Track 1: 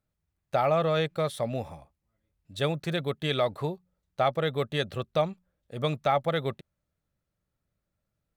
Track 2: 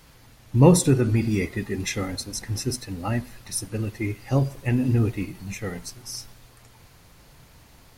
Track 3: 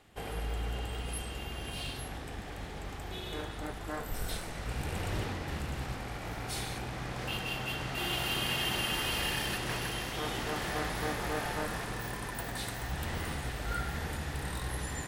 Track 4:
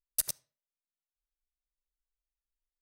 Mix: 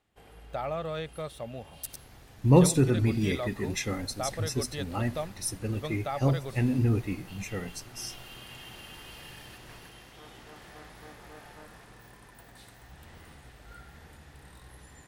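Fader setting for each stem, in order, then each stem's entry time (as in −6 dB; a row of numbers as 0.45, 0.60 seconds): −9.0, −4.0, −14.5, −9.5 decibels; 0.00, 1.90, 0.00, 1.65 seconds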